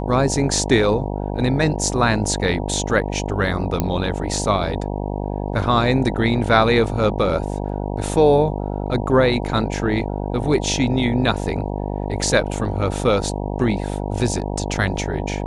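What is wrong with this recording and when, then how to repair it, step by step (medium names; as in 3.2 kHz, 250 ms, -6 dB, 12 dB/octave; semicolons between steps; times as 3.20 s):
buzz 50 Hz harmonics 19 -25 dBFS
3.80 s: pop -6 dBFS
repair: de-click; de-hum 50 Hz, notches 19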